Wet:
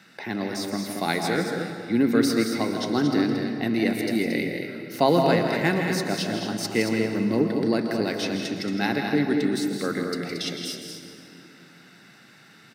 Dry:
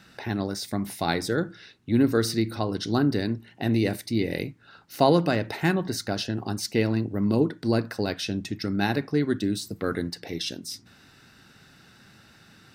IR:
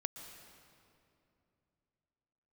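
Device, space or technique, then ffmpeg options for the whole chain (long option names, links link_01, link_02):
stadium PA: -filter_complex "[0:a]highpass=frequency=150:width=0.5412,highpass=frequency=150:width=1.3066,equalizer=frequency=2100:width_type=o:width=0.29:gain=7,aecho=1:1:163.3|227.4:0.355|0.447[link_01];[1:a]atrim=start_sample=2205[link_02];[link_01][link_02]afir=irnorm=-1:irlink=0,volume=1.5dB"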